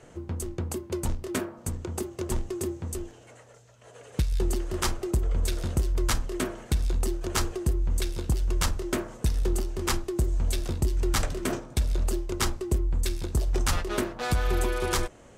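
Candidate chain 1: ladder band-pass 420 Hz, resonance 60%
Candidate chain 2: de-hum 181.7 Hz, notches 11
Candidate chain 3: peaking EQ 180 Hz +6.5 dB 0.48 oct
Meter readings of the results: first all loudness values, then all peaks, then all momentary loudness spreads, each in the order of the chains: -40.5 LUFS, -30.0 LUFS, -29.5 LUFS; -24.0 dBFS, -14.0 dBFS, -13.0 dBFS; 8 LU, 6 LU, 6 LU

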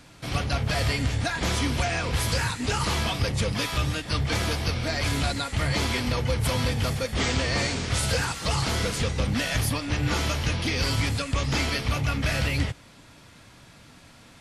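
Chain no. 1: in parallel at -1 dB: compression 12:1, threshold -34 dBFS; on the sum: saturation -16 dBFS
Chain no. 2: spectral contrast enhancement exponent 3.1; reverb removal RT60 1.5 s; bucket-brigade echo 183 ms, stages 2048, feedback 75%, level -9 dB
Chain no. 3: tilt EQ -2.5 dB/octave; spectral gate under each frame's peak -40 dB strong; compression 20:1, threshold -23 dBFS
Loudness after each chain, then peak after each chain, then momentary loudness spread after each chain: -25.5 LUFS, -29.5 LUFS, -29.0 LUFS; -17.0 dBFS, -15.5 dBFS, -14.5 dBFS; 7 LU, 4 LU, 6 LU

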